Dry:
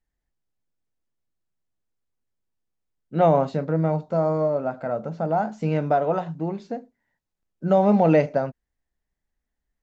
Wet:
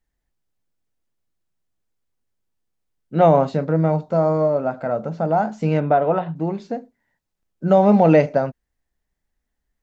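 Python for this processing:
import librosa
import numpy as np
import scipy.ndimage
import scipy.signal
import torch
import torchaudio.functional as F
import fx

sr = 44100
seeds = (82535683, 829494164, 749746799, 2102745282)

y = fx.lowpass(x, sr, hz=3600.0, slope=24, at=(5.8, 6.36))
y = y * 10.0 ** (4.0 / 20.0)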